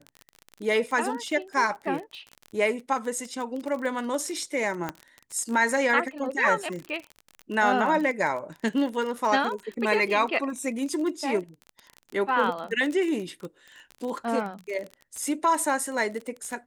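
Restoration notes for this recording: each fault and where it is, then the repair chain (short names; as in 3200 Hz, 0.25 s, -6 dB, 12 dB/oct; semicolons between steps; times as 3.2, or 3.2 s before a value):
crackle 29/s -31 dBFS
4.89 pop -15 dBFS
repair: de-click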